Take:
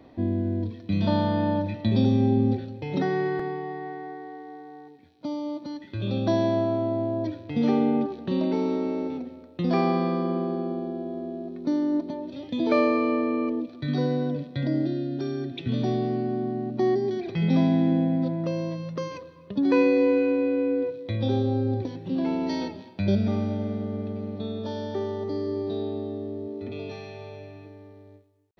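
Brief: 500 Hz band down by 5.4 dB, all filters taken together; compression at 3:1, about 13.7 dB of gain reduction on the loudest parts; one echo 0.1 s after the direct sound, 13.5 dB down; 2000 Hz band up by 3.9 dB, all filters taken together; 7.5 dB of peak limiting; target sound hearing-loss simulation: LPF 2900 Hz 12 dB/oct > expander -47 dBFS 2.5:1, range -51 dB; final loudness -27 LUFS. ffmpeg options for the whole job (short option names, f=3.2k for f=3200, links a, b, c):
-af "equalizer=f=500:t=o:g=-7.5,equalizer=f=2k:t=o:g=6.5,acompressor=threshold=-38dB:ratio=3,alimiter=level_in=6dB:limit=-24dB:level=0:latency=1,volume=-6dB,lowpass=2.9k,aecho=1:1:100:0.211,agate=range=-51dB:threshold=-47dB:ratio=2.5,volume=12.5dB"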